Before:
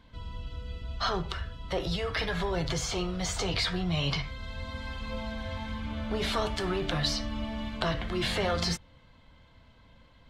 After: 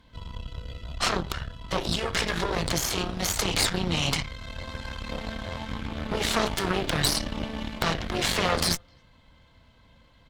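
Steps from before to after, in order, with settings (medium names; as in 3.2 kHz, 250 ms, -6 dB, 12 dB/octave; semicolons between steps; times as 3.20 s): treble shelf 5.4 kHz +6 dB; speakerphone echo 260 ms, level -30 dB; Chebyshev shaper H 6 -8 dB, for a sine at -11.5 dBFS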